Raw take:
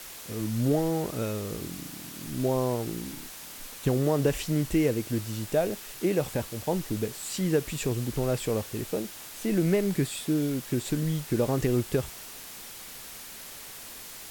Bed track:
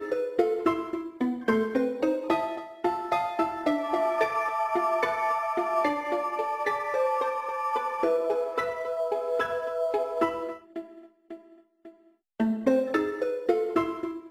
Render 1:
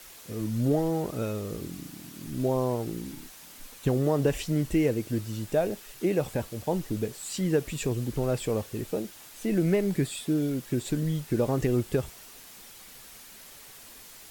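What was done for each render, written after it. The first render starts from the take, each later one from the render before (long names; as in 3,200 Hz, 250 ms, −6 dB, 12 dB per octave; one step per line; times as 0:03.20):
broadband denoise 6 dB, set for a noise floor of −43 dBFS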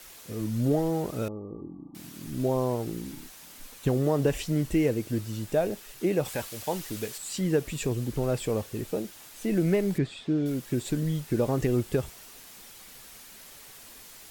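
0:01.28–0:01.95: Chebyshev low-pass with heavy ripple 1,200 Hz, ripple 9 dB
0:06.25–0:07.18: tilt shelving filter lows −7 dB, about 730 Hz
0:09.98–0:10.46: high-frequency loss of the air 150 metres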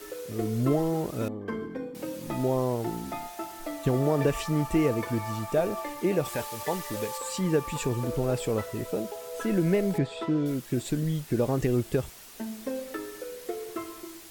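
mix in bed track −10.5 dB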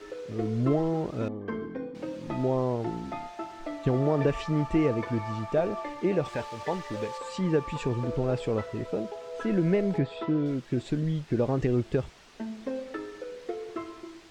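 high-frequency loss of the air 140 metres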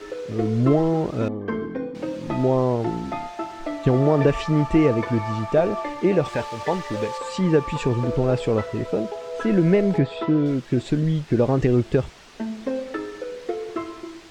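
level +7 dB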